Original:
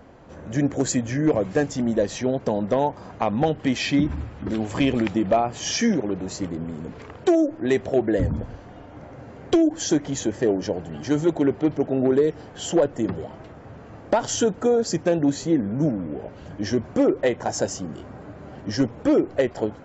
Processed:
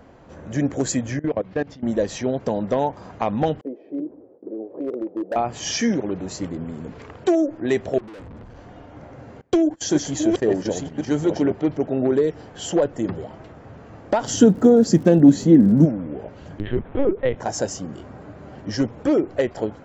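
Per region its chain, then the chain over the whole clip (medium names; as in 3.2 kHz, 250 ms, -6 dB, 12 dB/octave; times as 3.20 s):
1.19–1.83 s: low-pass 4.4 kHz 24 dB/octave + level held to a coarse grid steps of 21 dB
3.61–5.36 s: gate with hold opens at -27 dBFS, closes at -32 dBFS + Butterworth band-pass 430 Hz, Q 1.8 + overload inside the chain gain 20.5 dB
7.98–8.57 s: hum notches 50/100/150/200 Hz + compression 10:1, threshold -21 dBFS + valve stage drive 38 dB, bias 0.55
9.41–11.52 s: chunks repeated in reverse 534 ms, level -4 dB + gate -32 dBFS, range -25 dB
14.26–15.84 s: peaking EQ 210 Hz +13 dB 1.6 oct + band-stop 2.4 kHz, Q 17 + crackle 100 per s -36 dBFS
16.59–17.36 s: LPC vocoder at 8 kHz pitch kept + upward compressor, threshold -40 dBFS
whole clip: none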